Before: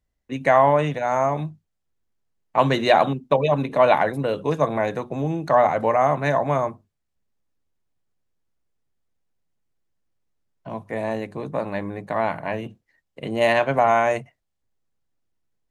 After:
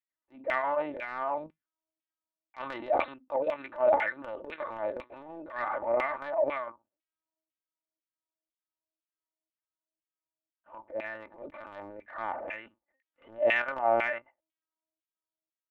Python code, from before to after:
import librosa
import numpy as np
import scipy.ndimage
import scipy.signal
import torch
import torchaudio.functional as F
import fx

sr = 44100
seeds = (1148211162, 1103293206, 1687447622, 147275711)

y = fx.lpc_vocoder(x, sr, seeds[0], excitation='pitch_kept', order=8)
y = fx.filter_lfo_bandpass(y, sr, shape='saw_down', hz=2.0, low_hz=460.0, high_hz=2500.0, q=3.2)
y = fx.transient(y, sr, attack_db=-12, sustain_db=5)
y = y + 0.58 * np.pad(y, (int(3.4 * sr / 1000.0), 0))[:len(y)]
y = y * librosa.db_to_amplitude(-2.0)